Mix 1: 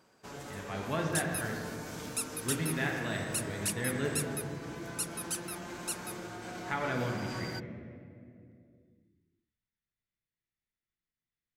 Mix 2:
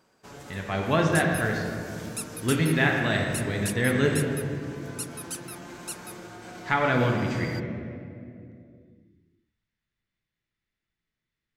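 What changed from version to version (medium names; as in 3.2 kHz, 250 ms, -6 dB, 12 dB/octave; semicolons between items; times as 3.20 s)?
speech +10.5 dB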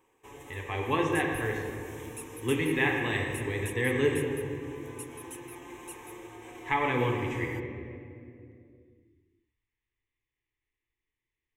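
second sound -7.0 dB; master: add static phaser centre 950 Hz, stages 8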